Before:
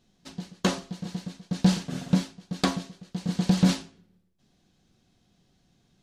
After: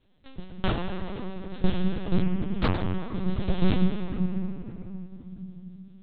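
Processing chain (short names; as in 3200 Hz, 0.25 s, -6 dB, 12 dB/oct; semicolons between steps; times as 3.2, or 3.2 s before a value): 1.1–1.59 HPF 550 Hz 6 dB/oct; reverb RT60 3.5 s, pre-delay 7 ms, DRR 0.5 dB; LPC vocoder at 8 kHz pitch kept; 2.22–3 Doppler distortion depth 0.38 ms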